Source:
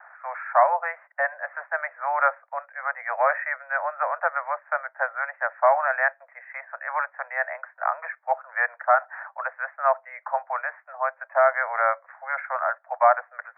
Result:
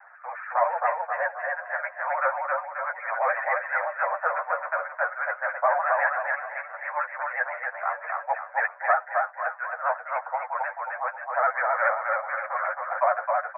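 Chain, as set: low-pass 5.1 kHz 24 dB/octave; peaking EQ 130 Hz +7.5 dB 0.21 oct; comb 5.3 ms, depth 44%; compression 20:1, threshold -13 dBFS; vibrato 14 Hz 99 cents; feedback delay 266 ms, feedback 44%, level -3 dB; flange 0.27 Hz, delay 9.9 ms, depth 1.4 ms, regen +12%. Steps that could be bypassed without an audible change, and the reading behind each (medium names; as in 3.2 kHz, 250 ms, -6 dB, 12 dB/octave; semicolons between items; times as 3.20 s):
low-pass 5.1 kHz: input has nothing above 2.4 kHz; peaking EQ 130 Hz: input has nothing below 450 Hz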